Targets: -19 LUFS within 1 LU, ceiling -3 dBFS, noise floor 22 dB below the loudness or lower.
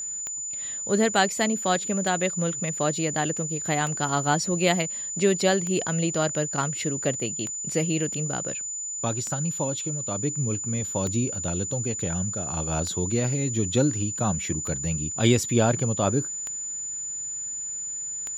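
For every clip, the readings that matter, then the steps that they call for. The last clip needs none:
clicks 11; steady tone 7000 Hz; tone level -30 dBFS; loudness -25.5 LUFS; peak -6.5 dBFS; loudness target -19.0 LUFS
-> de-click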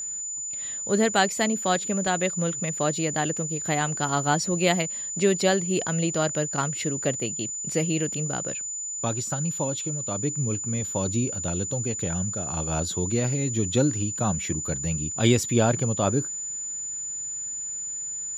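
clicks 0; steady tone 7000 Hz; tone level -30 dBFS
-> notch 7000 Hz, Q 30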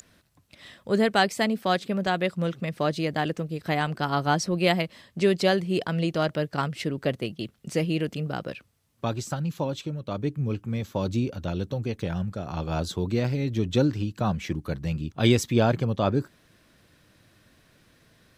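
steady tone none; loudness -27.0 LUFS; peak -6.5 dBFS; loudness target -19.0 LUFS
-> gain +8 dB; limiter -3 dBFS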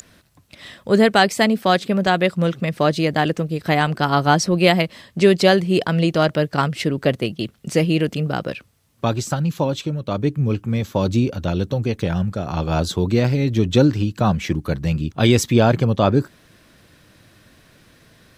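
loudness -19.5 LUFS; peak -3.0 dBFS; noise floor -54 dBFS

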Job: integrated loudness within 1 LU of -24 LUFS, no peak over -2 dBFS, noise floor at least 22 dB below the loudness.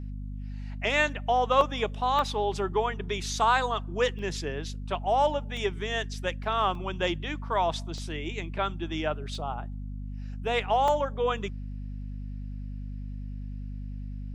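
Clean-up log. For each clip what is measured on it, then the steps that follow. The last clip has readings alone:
dropouts 8; longest dropout 1.3 ms; hum 50 Hz; harmonics up to 250 Hz; hum level -34 dBFS; loudness -28.5 LUFS; peak -9.5 dBFS; loudness target -24.0 LUFS
-> interpolate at 1.61/2.19/4.19/5.57/6.75/7.98/9.35/10.88, 1.3 ms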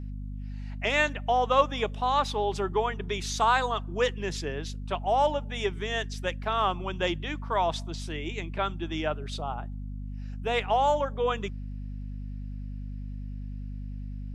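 dropouts 0; hum 50 Hz; harmonics up to 250 Hz; hum level -34 dBFS
-> notches 50/100/150/200/250 Hz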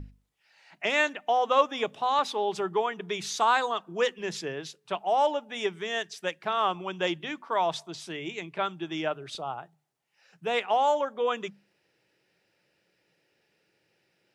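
hum none; loudness -28.5 LUFS; peak -9.5 dBFS; loudness target -24.0 LUFS
-> gain +4.5 dB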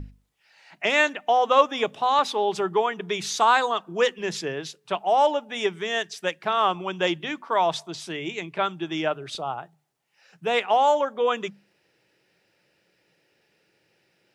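loudness -24.0 LUFS; peak -5.0 dBFS; noise floor -69 dBFS

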